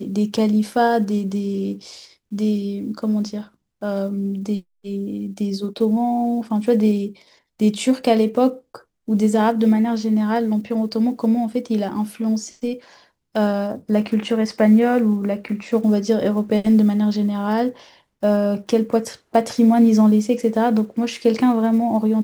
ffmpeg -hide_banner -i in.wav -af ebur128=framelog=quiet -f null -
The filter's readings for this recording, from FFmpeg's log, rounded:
Integrated loudness:
  I:         -19.6 LUFS
  Threshold: -30.0 LUFS
Loudness range:
  LRA:         6.8 LU
  Threshold: -40.2 LUFS
  LRA low:   -24.6 LUFS
  LRA high:  -17.8 LUFS